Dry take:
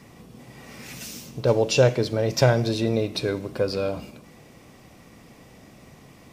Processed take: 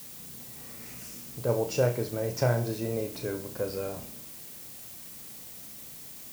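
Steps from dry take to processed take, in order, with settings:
parametric band 3,600 Hz −12 dB 0.75 octaves
on a send: flutter between parallel walls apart 5.7 metres, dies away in 0.28 s
on the sum: background noise blue −37 dBFS
level −8 dB

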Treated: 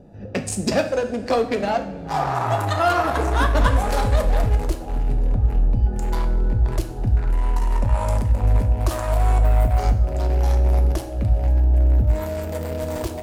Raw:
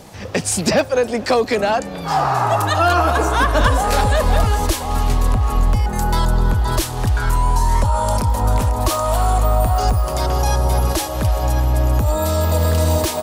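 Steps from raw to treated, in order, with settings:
adaptive Wiener filter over 41 samples
coupled-rooms reverb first 0.51 s, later 2.4 s, DRR 5 dB
level −3.5 dB

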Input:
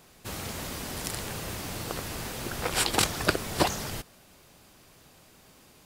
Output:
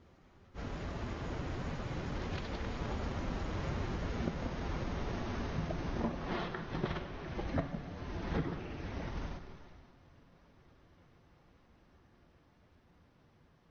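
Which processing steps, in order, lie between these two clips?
source passing by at 0:02.03, 18 m/s, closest 11 metres
downward compressor 12 to 1, threshold −39 dBFS, peak gain reduction 16 dB
reverb whose tail is shaped and stops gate 300 ms falling, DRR 6 dB
wrong playback speed 78 rpm record played at 33 rpm
low-pass filter 1,100 Hz 6 dB per octave
phase-vocoder pitch shift with formants kept +2 semitones
level +8 dB
Opus 20 kbit/s 48,000 Hz

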